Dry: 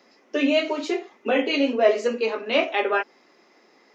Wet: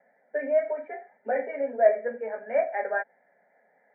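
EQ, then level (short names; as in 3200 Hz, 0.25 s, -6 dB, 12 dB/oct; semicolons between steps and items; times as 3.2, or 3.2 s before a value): rippled Chebyshev low-pass 2400 Hz, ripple 9 dB; bell 180 Hz +7 dB 0.27 oct; fixed phaser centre 1700 Hz, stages 8; 0.0 dB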